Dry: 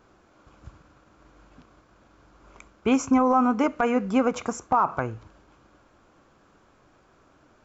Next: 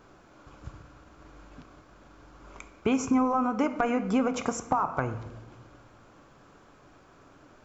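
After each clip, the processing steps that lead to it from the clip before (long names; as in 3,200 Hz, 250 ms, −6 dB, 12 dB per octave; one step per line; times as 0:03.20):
downward compressor 6 to 1, threshold −26 dBFS, peak gain reduction 10 dB
on a send at −10.5 dB: convolution reverb RT60 1.3 s, pre-delay 7 ms
on the sum: level +3 dB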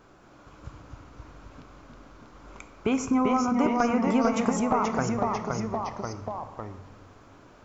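delay with pitch and tempo change per echo 221 ms, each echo −1 semitone, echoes 3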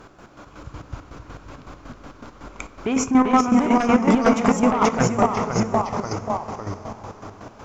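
feedback delay with all-pass diffusion 594 ms, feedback 40%, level −11.5 dB
sine wavefolder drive 7 dB, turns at −8.5 dBFS
square-wave tremolo 5.4 Hz, depth 60%, duty 40%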